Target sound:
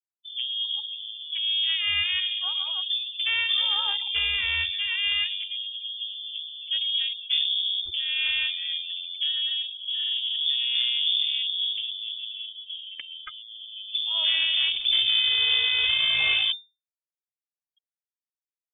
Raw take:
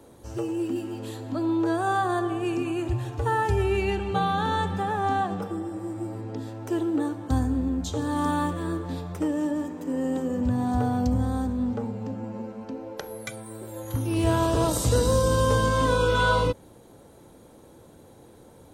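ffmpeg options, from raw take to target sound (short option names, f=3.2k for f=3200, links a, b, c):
-af "afftfilt=real='re*gte(hypot(re,im),0.0316)':imag='im*gte(hypot(re,im),0.0316)':win_size=1024:overlap=0.75,aeval=exprs='0.299*(cos(1*acos(clip(val(0)/0.299,-1,1)))-cos(1*PI/2))+0.00266*(cos(3*acos(clip(val(0)/0.299,-1,1)))-cos(3*PI/2))+0.0266*(cos(6*acos(clip(val(0)/0.299,-1,1)))-cos(6*PI/2))':c=same,lowpass=f=3.1k:t=q:w=0.5098,lowpass=f=3.1k:t=q:w=0.6013,lowpass=f=3.1k:t=q:w=0.9,lowpass=f=3.1k:t=q:w=2.563,afreqshift=-3600,lowshelf=f=110:t=q:w=3:g=7,volume=-1.5dB"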